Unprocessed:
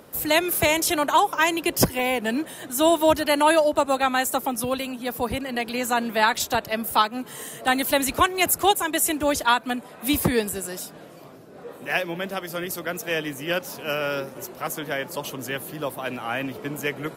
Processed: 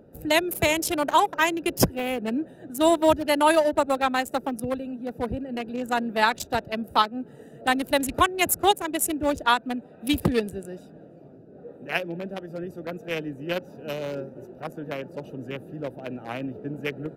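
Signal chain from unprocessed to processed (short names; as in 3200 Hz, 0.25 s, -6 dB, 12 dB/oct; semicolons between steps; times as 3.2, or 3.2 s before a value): Wiener smoothing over 41 samples; 9.75–10.92 bell 3100 Hz +5 dB 1.5 oct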